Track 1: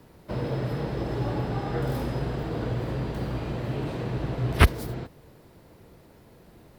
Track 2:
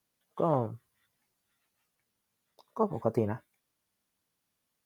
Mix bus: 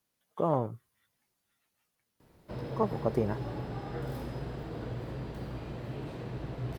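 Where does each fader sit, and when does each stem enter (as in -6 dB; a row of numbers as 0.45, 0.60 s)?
-9.0, -0.5 dB; 2.20, 0.00 s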